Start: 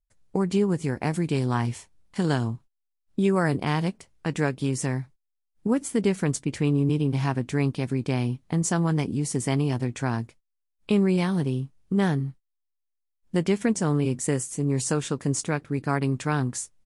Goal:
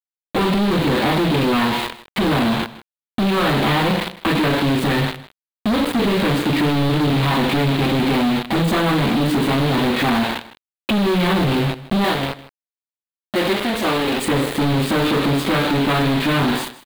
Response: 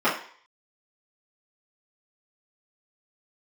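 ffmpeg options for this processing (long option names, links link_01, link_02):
-filter_complex "[1:a]atrim=start_sample=2205,asetrate=41454,aresample=44100[link_01];[0:a][link_01]afir=irnorm=-1:irlink=0,acompressor=threshold=-17dB:ratio=6,asoftclip=type=tanh:threshold=-20dB,asettb=1/sr,asplit=3[link_02][link_03][link_04];[link_02]atrim=end=12.044[link_05];[link_03]atrim=start=12.04:end=14.25,asetpts=PTS-STARTPTS,afade=type=in:duration=0.004:curve=qsin,afade=type=out:start_time=2.206:duration=0.004:curve=qsin,bass=frequency=250:gain=-12,treble=frequency=4000:gain=11[link_06];[link_04]atrim=start=14.246[link_07];[link_05][link_06]acrossfade=duration=0.004:curve1=hsin:curve2=qsin[link_08];[link_08][link_07]acrossfade=duration=0.004:curve1=qsin:curve2=hsin,acrusher=bits=4:mix=0:aa=0.000001,highshelf=frequency=4700:width_type=q:width=3:gain=-6.5,aecho=1:1:157:0.141,volume=7.5dB"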